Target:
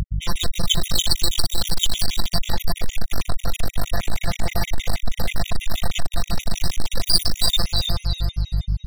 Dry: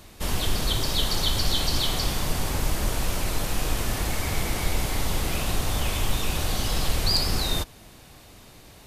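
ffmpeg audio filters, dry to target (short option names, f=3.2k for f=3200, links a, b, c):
-filter_complex "[0:a]afftfilt=real='hypot(re,im)*cos(PI*b)':imag='0':win_size=1024:overlap=0.75,aeval=exprs='val(0)+0.0126*(sin(2*PI*50*n/s)+sin(2*PI*2*50*n/s)/2+sin(2*PI*3*50*n/s)/3+sin(2*PI*4*50*n/s)/4+sin(2*PI*5*50*n/s)/5)':c=same,equalizer=f=260:t=o:w=0.71:g=-8,apsyclip=10.5dB,afftfilt=real='re*gte(hypot(re,im),0.0891)':imag='im*gte(hypot(re,im),0.0891)':win_size=1024:overlap=0.75,aecho=1:1:341|682|1023|1364:0.376|0.132|0.046|0.0161,asplit=2[a][b];[b]acompressor=threshold=-24dB:ratio=10,volume=0dB[c];[a][c]amix=inputs=2:normalize=0,aeval=exprs='clip(val(0),-1,0.211)':c=same,crystalizer=i=2.5:c=0,equalizer=f=9.1k:t=o:w=1.6:g=-5.5,areverse,acompressor=mode=upward:threshold=-35dB:ratio=2.5,areverse,afftfilt=real='re*gt(sin(2*PI*6.3*pts/sr)*(1-2*mod(floor(b*sr/1024/1900),2)),0)':imag='im*gt(sin(2*PI*6.3*pts/sr)*(1-2*mod(floor(b*sr/1024/1900),2)),0)':win_size=1024:overlap=0.75,volume=2dB"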